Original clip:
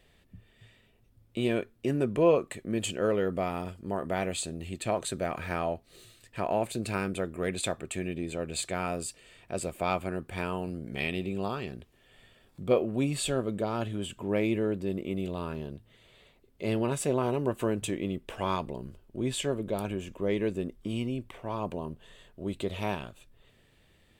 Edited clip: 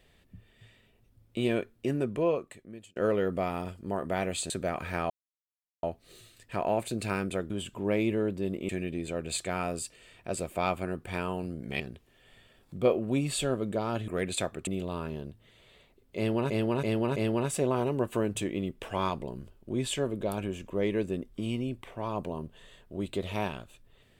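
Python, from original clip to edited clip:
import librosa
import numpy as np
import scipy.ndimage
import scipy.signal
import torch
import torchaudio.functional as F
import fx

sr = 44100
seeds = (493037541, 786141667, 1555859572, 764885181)

y = fx.edit(x, sr, fx.fade_out_span(start_s=1.77, length_s=1.19),
    fx.cut(start_s=4.5, length_s=0.57),
    fx.insert_silence(at_s=5.67, length_s=0.73),
    fx.swap(start_s=7.34, length_s=0.59, other_s=13.94, other_length_s=1.19),
    fx.cut(start_s=11.04, length_s=0.62),
    fx.repeat(start_s=16.63, length_s=0.33, count=4), tone=tone)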